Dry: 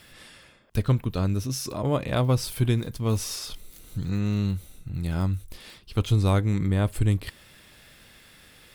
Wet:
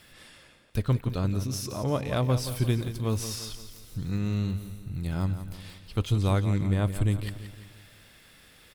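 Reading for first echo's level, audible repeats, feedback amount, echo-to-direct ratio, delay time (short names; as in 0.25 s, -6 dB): -11.0 dB, 4, 49%, -10.0 dB, 0.173 s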